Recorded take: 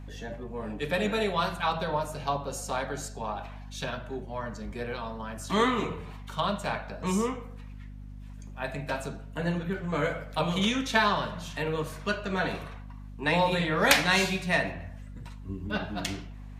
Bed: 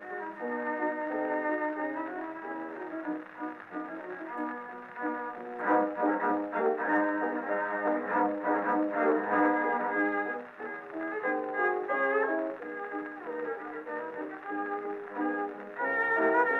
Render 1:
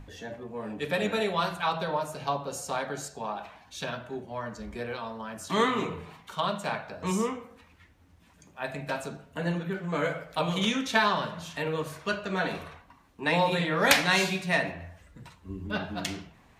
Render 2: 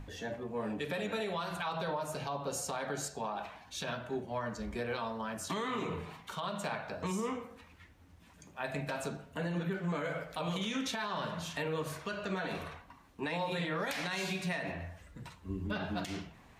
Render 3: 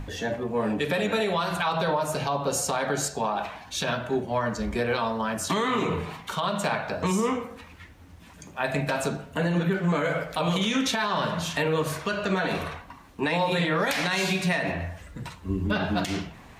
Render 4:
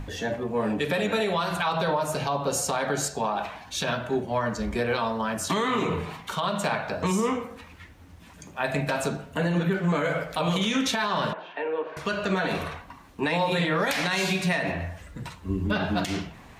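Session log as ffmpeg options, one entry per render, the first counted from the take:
ffmpeg -i in.wav -af "bandreject=frequency=50:width_type=h:width=6,bandreject=frequency=100:width_type=h:width=6,bandreject=frequency=150:width_type=h:width=6,bandreject=frequency=200:width_type=h:width=6,bandreject=frequency=250:width_type=h:width=6" out.wav
ffmpeg -i in.wav -af "acompressor=threshold=-27dB:ratio=6,alimiter=level_in=2.5dB:limit=-24dB:level=0:latency=1:release=115,volume=-2.5dB" out.wav
ffmpeg -i in.wav -af "volume=10.5dB" out.wav
ffmpeg -i in.wav -filter_complex "[0:a]asettb=1/sr,asplit=3[link_01][link_02][link_03];[link_01]atrim=end=11.334[link_04];[link_02]atrim=start=11.33:end=11.97,asetpts=PTS-STARTPTS,afade=type=in:duration=0.004:curve=qsin,afade=type=out:start_time=0.636:duration=0.004:curve=qsin,highpass=frequency=370:width=0.5412,highpass=frequency=370:width=1.3066,equalizer=frequency=580:width_type=q:width=4:gain=-5,equalizer=frequency=1200:width_type=q:width=4:gain=-10,equalizer=frequency=2000:width_type=q:width=4:gain=-8,lowpass=frequency=2200:width=0.5412,lowpass=frequency=2200:width=1.3066[link_05];[link_03]atrim=start=11.966[link_06];[link_04][link_05]acrossfade=duration=0.004:curve1=hsin:curve2=qsin[link_07];[link_07][link_06]acrossfade=duration=0.004:curve1=qsin:curve2=hsin" out.wav

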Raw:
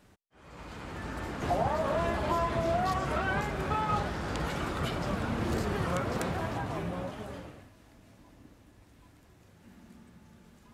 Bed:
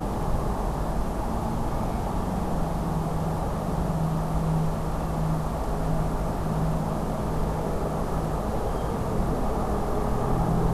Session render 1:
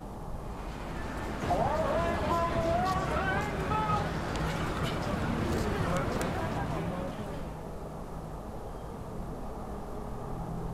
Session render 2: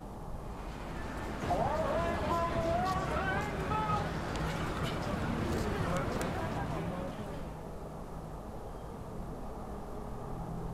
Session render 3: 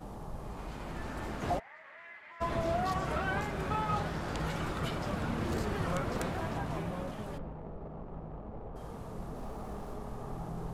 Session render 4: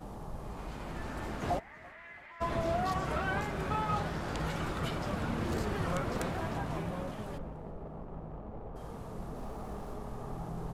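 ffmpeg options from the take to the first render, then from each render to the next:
ffmpeg -i in.wav -i bed.wav -filter_complex "[1:a]volume=-13dB[link_01];[0:a][link_01]amix=inputs=2:normalize=0" out.wav
ffmpeg -i in.wav -af "volume=-3dB" out.wav
ffmpeg -i in.wav -filter_complex "[0:a]asplit=3[link_01][link_02][link_03];[link_01]afade=type=out:start_time=1.58:duration=0.02[link_04];[link_02]bandpass=frequency=2000:width_type=q:width=7,afade=type=in:start_time=1.58:duration=0.02,afade=type=out:start_time=2.4:duration=0.02[link_05];[link_03]afade=type=in:start_time=2.4:duration=0.02[link_06];[link_04][link_05][link_06]amix=inputs=3:normalize=0,asplit=3[link_07][link_08][link_09];[link_07]afade=type=out:start_time=7.37:duration=0.02[link_10];[link_08]adynamicsmooth=sensitivity=4:basefreq=980,afade=type=in:start_time=7.37:duration=0.02,afade=type=out:start_time=8.75:duration=0.02[link_11];[link_09]afade=type=in:start_time=8.75:duration=0.02[link_12];[link_10][link_11][link_12]amix=inputs=3:normalize=0,asettb=1/sr,asplit=3[link_13][link_14][link_15];[link_13]atrim=end=9.364[link_16];[link_14]atrim=start=9.36:end=9.94,asetpts=PTS-STARTPTS,afade=type=in:duration=0.004:curve=qsin,afade=type=out:start_time=0.576:duration=0.004:curve=qsin,aeval=exprs='val(0)+0.5*0.00178*sgn(val(0))':channel_layout=same[link_17];[link_15]atrim=start=9.936[link_18];[link_16][link_17]acrossfade=duration=0.004:curve1=hsin:curve2=qsin[link_19];[link_19][link_18]acrossfade=duration=0.004:curve1=qsin:curve2=hsin" out.wav
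ffmpeg -i in.wav -af "aecho=1:1:336|672|1008|1344:0.075|0.039|0.0203|0.0105" out.wav

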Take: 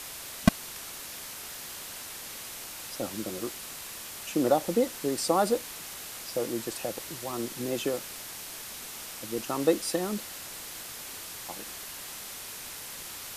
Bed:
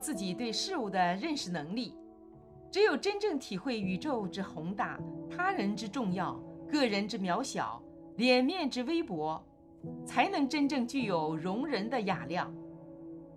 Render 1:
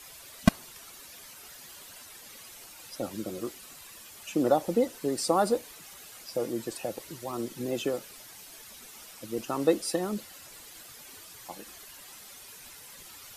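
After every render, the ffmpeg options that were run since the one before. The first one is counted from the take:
ffmpeg -i in.wav -af "afftdn=noise_reduction=11:noise_floor=-42" out.wav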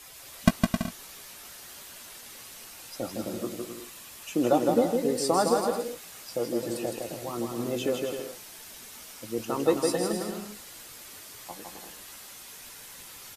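ffmpeg -i in.wav -filter_complex "[0:a]asplit=2[link_01][link_02];[link_02]adelay=17,volume=-11.5dB[link_03];[link_01][link_03]amix=inputs=2:normalize=0,aecho=1:1:160|264|331.6|375.5|404.1:0.631|0.398|0.251|0.158|0.1" out.wav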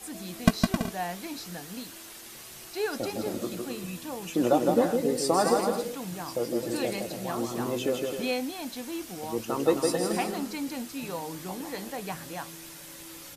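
ffmpeg -i in.wav -i bed.wav -filter_complex "[1:a]volume=-4dB[link_01];[0:a][link_01]amix=inputs=2:normalize=0" out.wav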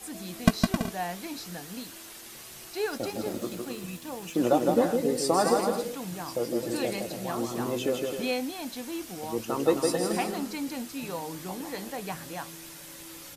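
ffmpeg -i in.wav -filter_complex "[0:a]asettb=1/sr,asplit=3[link_01][link_02][link_03];[link_01]atrim=end=2.844[link_04];[link_02]atrim=start=2.84:end=4.8,asetpts=PTS-STARTPTS,afade=type=in:duration=0.004:curve=qsin,afade=type=out:start_time=1.956:duration=0.004:curve=qsin,aeval=exprs='sgn(val(0))*max(abs(val(0))-0.00266,0)':channel_layout=same[link_05];[link_03]atrim=start=4.796[link_06];[link_04][link_05]acrossfade=duration=0.004:curve1=hsin:curve2=qsin[link_07];[link_07][link_06]acrossfade=duration=0.004:curve1=qsin:curve2=hsin" out.wav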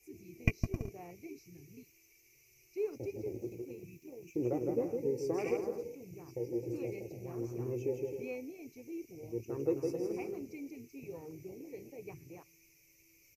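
ffmpeg -i in.wav -af "afwtdn=0.0251,firequalizer=gain_entry='entry(130,0);entry(190,-19);entry(390,-2);entry(600,-18);entry(1600,-25);entry(2300,8);entry(3400,-25);entry(5900,3);entry(8600,-18);entry(13000,-1)':delay=0.05:min_phase=1" out.wav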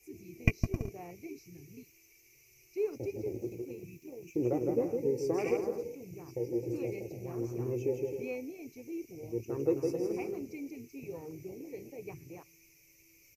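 ffmpeg -i in.wav -af "volume=3dB" out.wav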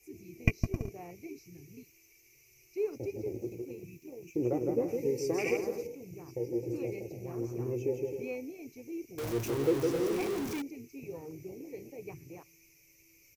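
ffmpeg -i in.wav -filter_complex "[0:a]asettb=1/sr,asplit=3[link_01][link_02][link_03];[link_01]atrim=end=4.884[link_04];[link_02]atrim=start=4.88:end=5.87,asetpts=PTS-STARTPTS,afade=type=in:duration=0.004:curve=qsin,afade=type=out:start_time=0.986:duration=0.004:curve=qsin,highshelf=frequency=1700:width_type=q:width=1.5:gain=6[link_05];[link_03]atrim=start=5.866[link_06];[link_04][link_05]acrossfade=duration=0.004:curve1=hsin:curve2=qsin[link_07];[link_07][link_06]acrossfade=duration=0.004:curve1=qsin:curve2=hsin,asettb=1/sr,asplit=3[link_08][link_09][link_10];[link_08]atrim=end=9.184[link_11];[link_09]atrim=start=9.18:end=10.62,asetpts=PTS-STARTPTS,afade=type=in:duration=0.004:curve=qsin,afade=type=out:start_time=1.436:duration=0.004:curve=qsin,aeval=exprs='val(0)+0.5*0.0224*sgn(val(0))':channel_layout=same[link_12];[link_10]atrim=start=10.616[link_13];[link_11][link_12]acrossfade=duration=0.004:curve1=hsin:curve2=qsin[link_14];[link_14][link_13]acrossfade=duration=0.004:curve1=qsin:curve2=hsin" out.wav

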